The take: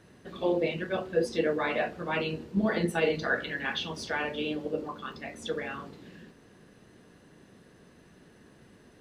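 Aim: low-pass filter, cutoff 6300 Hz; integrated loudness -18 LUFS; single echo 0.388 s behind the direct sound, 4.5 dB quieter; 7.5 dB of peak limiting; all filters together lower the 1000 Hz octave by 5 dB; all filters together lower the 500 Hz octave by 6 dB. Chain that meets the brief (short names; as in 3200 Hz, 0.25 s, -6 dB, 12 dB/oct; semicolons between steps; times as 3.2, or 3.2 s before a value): LPF 6300 Hz; bell 500 Hz -6 dB; bell 1000 Hz -4.5 dB; limiter -24.5 dBFS; echo 0.388 s -4.5 dB; gain +17 dB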